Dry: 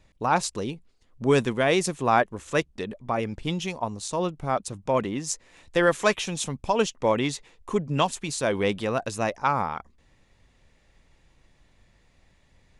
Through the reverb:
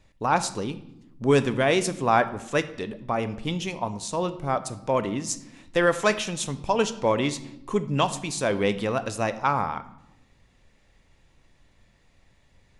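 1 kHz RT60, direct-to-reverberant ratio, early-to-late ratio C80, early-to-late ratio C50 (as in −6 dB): 0.75 s, 11.0 dB, 16.5 dB, 14.5 dB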